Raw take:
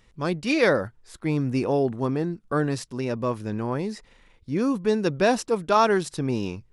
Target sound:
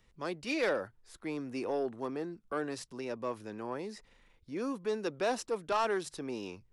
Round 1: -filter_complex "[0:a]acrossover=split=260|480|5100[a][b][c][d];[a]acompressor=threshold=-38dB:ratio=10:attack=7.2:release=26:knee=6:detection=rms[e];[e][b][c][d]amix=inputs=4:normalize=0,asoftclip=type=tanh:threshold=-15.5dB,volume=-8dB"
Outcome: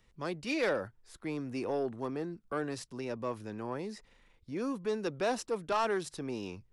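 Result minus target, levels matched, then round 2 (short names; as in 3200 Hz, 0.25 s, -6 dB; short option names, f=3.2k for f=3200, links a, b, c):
compressor: peak gain reduction -7.5 dB
-filter_complex "[0:a]acrossover=split=260|480|5100[a][b][c][d];[a]acompressor=threshold=-46.5dB:ratio=10:attack=7.2:release=26:knee=6:detection=rms[e];[e][b][c][d]amix=inputs=4:normalize=0,asoftclip=type=tanh:threshold=-15.5dB,volume=-8dB"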